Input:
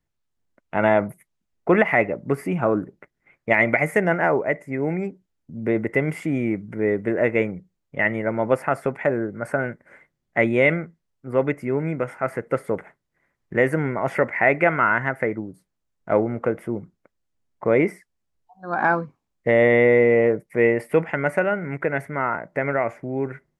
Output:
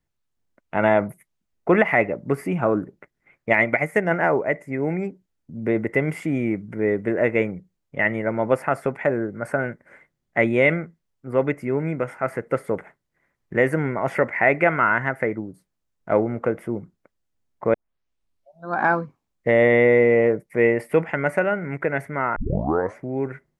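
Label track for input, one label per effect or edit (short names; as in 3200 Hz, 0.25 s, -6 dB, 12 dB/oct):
3.600000	4.110000	upward expander, over -30 dBFS
17.740000	17.740000	tape start 0.96 s
22.360000	22.360000	tape start 0.61 s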